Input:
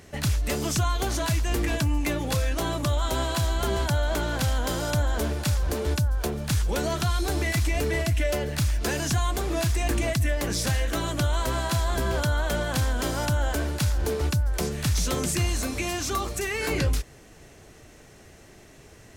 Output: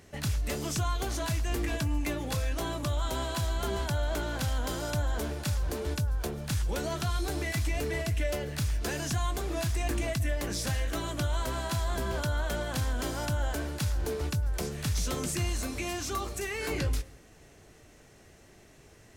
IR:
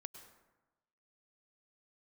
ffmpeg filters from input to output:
-filter_complex "[0:a]asplit=2[s0][s1];[1:a]atrim=start_sample=2205,asetrate=52920,aresample=44100,adelay=20[s2];[s1][s2]afir=irnorm=-1:irlink=0,volume=0.473[s3];[s0][s3]amix=inputs=2:normalize=0,volume=0.501"

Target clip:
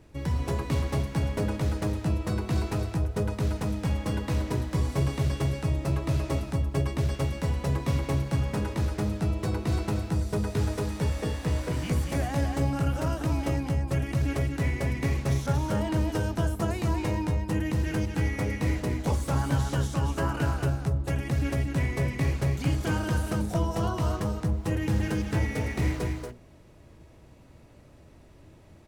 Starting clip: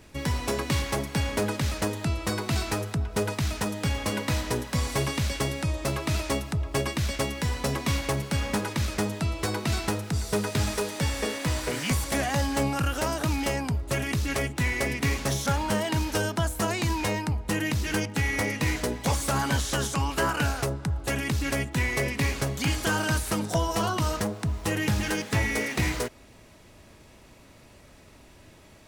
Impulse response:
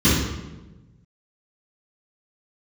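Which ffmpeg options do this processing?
-filter_complex "[0:a]tiltshelf=f=1100:g=5,aecho=1:1:234:0.596,asplit=2[s0][s1];[1:a]atrim=start_sample=2205,atrim=end_sample=3528[s2];[s1][s2]afir=irnorm=-1:irlink=0,volume=0.0141[s3];[s0][s3]amix=inputs=2:normalize=0,volume=0.473"

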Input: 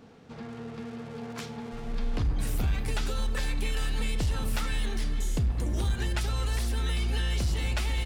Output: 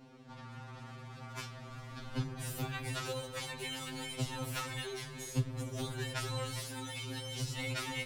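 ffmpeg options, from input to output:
-filter_complex "[0:a]asettb=1/sr,asplit=3[s0][s1][s2];[s0]atrim=end=6.504[s3];[s1]atrim=start=6.5:end=7.59,asetpts=PTS-STARTPTS,afade=t=in:d=0.004:c=qsin,afade=t=out:st=1.086:d=0.004:c=qsin,acrossover=split=180|3000[s4][s5][s6];[s5]acompressor=threshold=0.0112:ratio=6[s7];[s4][s7][s6]amix=inputs=3:normalize=0[s8];[s2]atrim=start=7.586[s9];[s3][s8]acrossfade=d=0.004:c1=hsin:c2=qsin[s10];[s10][s9]acrossfade=d=0.004:c1=qsin:c2=hsin,afftfilt=real='re*2.45*eq(mod(b,6),0)':imag='im*2.45*eq(mod(b,6),0)':win_size=2048:overlap=0.75,volume=0.891"

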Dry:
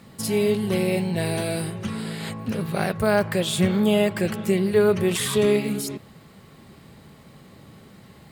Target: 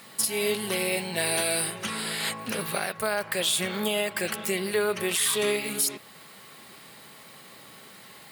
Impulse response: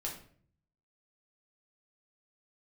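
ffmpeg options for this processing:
-af "highpass=f=1400:p=1,alimiter=limit=0.0708:level=0:latency=1:release=366,aexciter=amount=1.3:drive=6.5:freq=9600,volume=2.51"

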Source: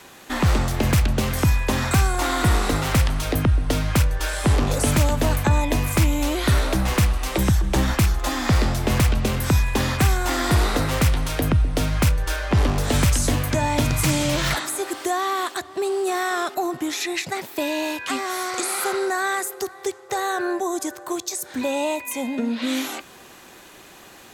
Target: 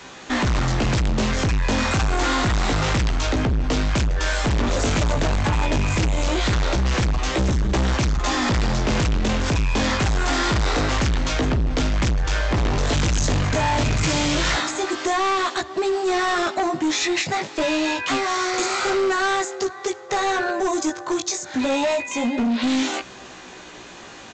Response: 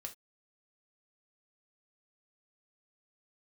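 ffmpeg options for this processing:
-af "flanger=delay=15.5:depth=3.9:speed=0.26,aresample=16000,asoftclip=type=hard:threshold=0.0473,aresample=44100,volume=2.66"

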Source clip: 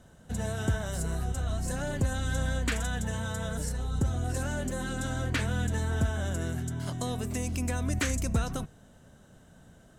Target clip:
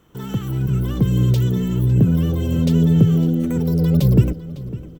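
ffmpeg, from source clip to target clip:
-filter_complex "[0:a]asubboost=boost=11.5:cutoff=140,tremolo=f=130:d=0.333,asplit=2[s0][s1];[s1]adelay=1108,lowpass=f=2800:p=1,volume=0.158,asplit=2[s2][s3];[s3]adelay=1108,lowpass=f=2800:p=1,volume=0.37,asplit=2[s4][s5];[s5]adelay=1108,lowpass=f=2800:p=1,volume=0.37[s6];[s0][s2][s4][s6]amix=inputs=4:normalize=0,asetrate=88200,aresample=44100"

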